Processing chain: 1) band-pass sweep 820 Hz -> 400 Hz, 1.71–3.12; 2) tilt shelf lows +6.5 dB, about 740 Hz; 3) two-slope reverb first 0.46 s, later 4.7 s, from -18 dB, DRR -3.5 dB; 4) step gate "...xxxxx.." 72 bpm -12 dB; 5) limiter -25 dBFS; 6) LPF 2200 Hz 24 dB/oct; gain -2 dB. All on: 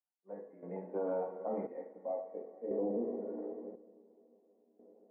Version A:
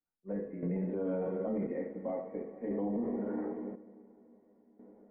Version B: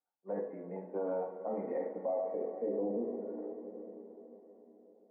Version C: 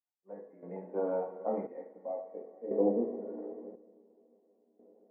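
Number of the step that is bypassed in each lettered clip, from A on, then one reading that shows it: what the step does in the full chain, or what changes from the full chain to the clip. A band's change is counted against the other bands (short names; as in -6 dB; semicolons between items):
1, momentary loudness spread change -6 LU; 4, crest factor change -2.0 dB; 5, crest factor change +7.5 dB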